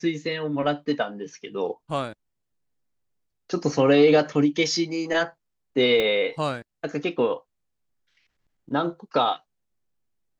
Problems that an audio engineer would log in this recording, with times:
6.00 s: pop -12 dBFS

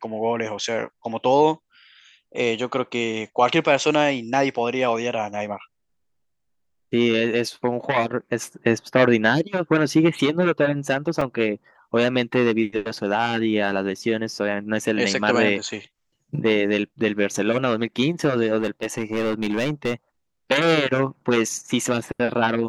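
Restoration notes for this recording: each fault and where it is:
11.21 s: dropout 3.9 ms
18.58–19.94 s: clipped -18.5 dBFS

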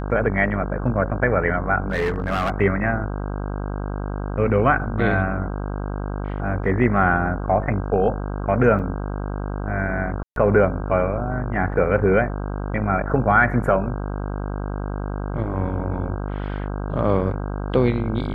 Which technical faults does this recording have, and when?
buzz 50 Hz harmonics 32 -27 dBFS
1.90–2.50 s: clipped -17.5 dBFS
8.79–8.80 s: dropout 6.1 ms
10.23–10.36 s: dropout 132 ms

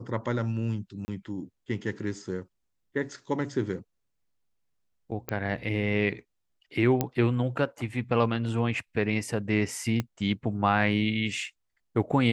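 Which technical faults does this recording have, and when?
1.05–1.08 s: dropout 30 ms
5.29 s: pop -15 dBFS
7.01 s: pop -11 dBFS
10.00 s: pop -15 dBFS

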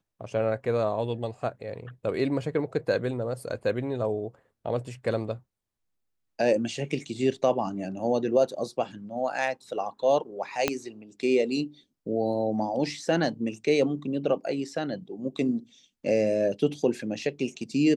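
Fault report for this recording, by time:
10.68 s: pop -8 dBFS

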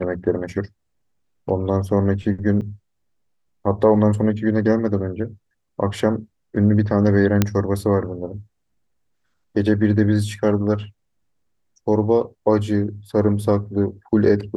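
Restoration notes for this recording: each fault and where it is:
2.61–2.62 s: dropout 7.7 ms
7.42 s: pop -2 dBFS

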